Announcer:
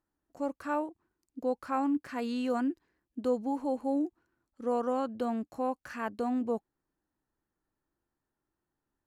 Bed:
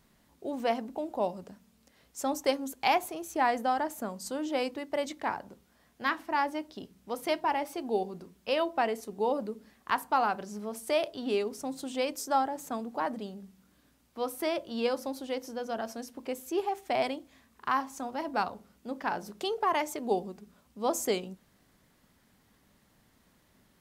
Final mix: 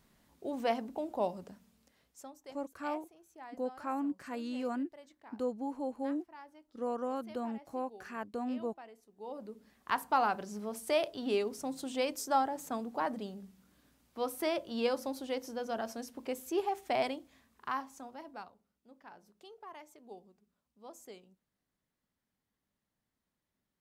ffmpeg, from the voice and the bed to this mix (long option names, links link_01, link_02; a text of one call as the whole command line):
ffmpeg -i stem1.wav -i stem2.wav -filter_complex "[0:a]adelay=2150,volume=-5.5dB[link_01];[1:a]volume=18.5dB,afade=type=out:start_time=1.65:duration=0.67:silence=0.0944061,afade=type=in:start_time=9.15:duration=0.92:silence=0.0891251,afade=type=out:start_time=16.87:duration=1.67:silence=0.105925[link_02];[link_01][link_02]amix=inputs=2:normalize=0" out.wav